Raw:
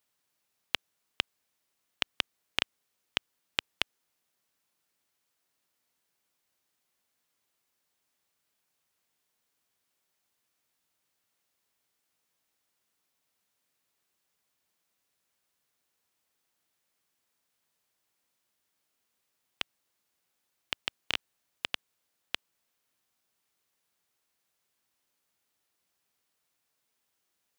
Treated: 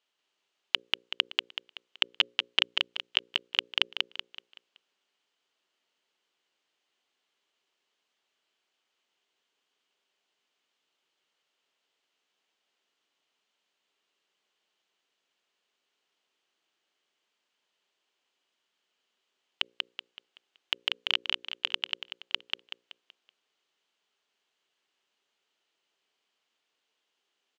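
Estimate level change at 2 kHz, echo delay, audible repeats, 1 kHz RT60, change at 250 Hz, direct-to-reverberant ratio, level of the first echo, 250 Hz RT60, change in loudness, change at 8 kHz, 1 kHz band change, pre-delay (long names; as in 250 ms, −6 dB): +4.5 dB, 189 ms, 4, no reverb audible, −0.5 dB, no reverb audible, −3.0 dB, no reverb audible, +6.0 dB, −3.5 dB, +2.0 dB, no reverb audible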